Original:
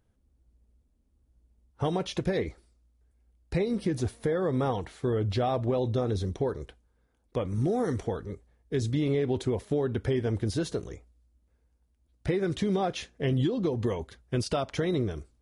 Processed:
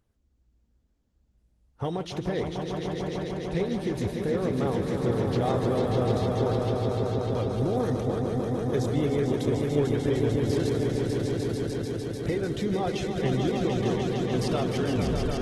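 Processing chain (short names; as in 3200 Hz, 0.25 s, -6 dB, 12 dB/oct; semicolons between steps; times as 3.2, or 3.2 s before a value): tape stop at the end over 0.67 s; swelling echo 0.149 s, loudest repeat 5, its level -6.5 dB; gain -1.5 dB; Opus 16 kbps 48000 Hz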